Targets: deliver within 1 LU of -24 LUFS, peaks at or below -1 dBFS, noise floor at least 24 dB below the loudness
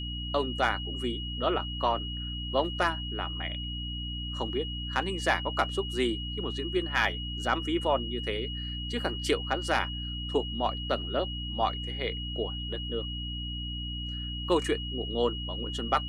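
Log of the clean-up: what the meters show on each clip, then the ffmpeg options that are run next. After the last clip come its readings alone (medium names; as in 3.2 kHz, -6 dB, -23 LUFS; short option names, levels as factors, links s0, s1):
hum 60 Hz; highest harmonic 300 Hz; hum level -34 dBFS; steady tone 2.9 kHz; tone level -37 dBFS; loudness -31.0 LUFS; peak level -13.0 dBFS; loudness target -24.0 LUFS
-> -af "bandreject=f=60:t=h:w=6,bandreject=f=120:t=h:w=6,bandreject=f=180:t=h:w=6,bandreject=f=240:t=h:w=6,bandreject=f=300:t=h:w=6"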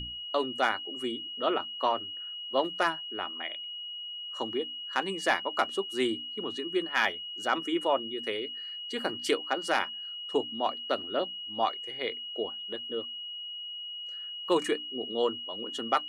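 hum not found; steady tone 2.9 kHz; tone level -37 dBFS
-> -af "bandreject=f=2900:w=30"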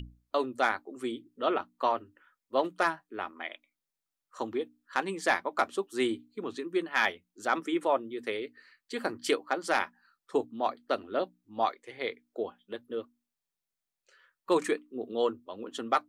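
steady tone not found; loudness -32.0 LUFS; peak level -14.0 dBFS; loudness target -24.0 LUFS
-> -af "volume=2.51"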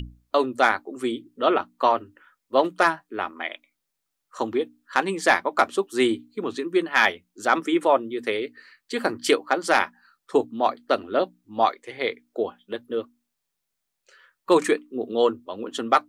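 loudness -24.5 LUFS; peak level -6.0 dBFS; noise floor -80 dBFS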